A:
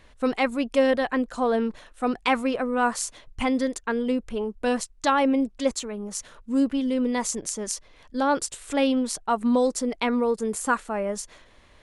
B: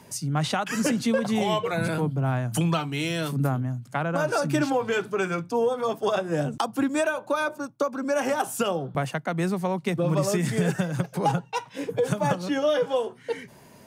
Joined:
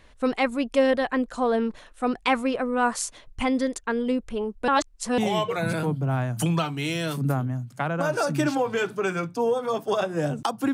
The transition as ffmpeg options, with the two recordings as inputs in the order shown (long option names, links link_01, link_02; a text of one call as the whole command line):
ffmpeg -i cue0.wav -i cue1.wav -filter_complex "[0:a]apad=whole_dur=10.73,atrim=end=10.73,asplit=2[link_01][link_02];[link_01]atrim=end=4.682[link_03];[link_02]atrim=start=4.678:end=5.182,asetpts=PTS-STARTPTS,areverse[link_04];[1:a]atrim=start=1.328:end=6.88[link_05];[link_03][link_04]acrossfade=duration=0.004:curve1=hsin:curve2=hsin[link_06];[link_06][link_05]acrossfade=duration=0.004:curve1=hsin:curve2=hsin" out.wav